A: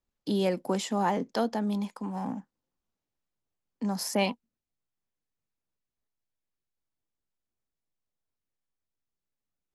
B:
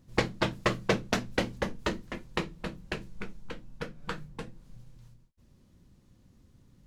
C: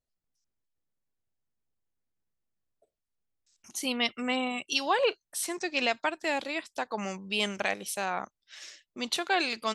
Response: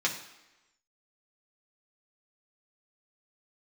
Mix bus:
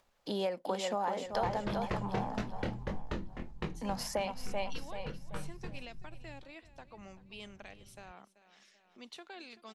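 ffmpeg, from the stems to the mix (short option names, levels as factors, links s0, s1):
-filter_complex "[0:a]lowshelf=f=420:t=q:w=1.5:g=-9,volume=1.12,asplit=3[s0][s1][s2];[s1]volume=0.282[s3];[1:a]lowshelf=f=200:g=11.5,flanger=delay=19:depth=7.6:speed=1.7,adelay=1250,volume=0.473[s4];[2:a]acrossover=split=360|3000[s5][s6][s7];[s6]acompressor=threshold=0.0224:ratio=6[s8];[s5][s8][s7]amix=inputs=3:normalize=0,volume=0.158,asplit=2[s9][s10];[s10]volume=0.15[s11];[s2]apad=whole_len=429627[s12];[s9][s12]sidechaincompress=threshold=0.0178:ratio=8:attack=16:release=309[s13];[s0][s4]amix=inputs=2:normalize=0,asoftclip=type=hard:threshold=0.168,acompressor=threshold=0.0316:ratio=10,volume=1[s14];[s3][s11]amix=inputs=2:normalize=0,aecho=0:1:384|768|1152|1536|1920|2304:1|0.41|0.168|0.0689|0.0283|0.0116[s15];[s13][s14][s15]amix=inputs=3:normalize=0,aemphasis=mode=reproduction:type=cd,acompressor=mode=upward:threshold=0.00126:ratio=2.5"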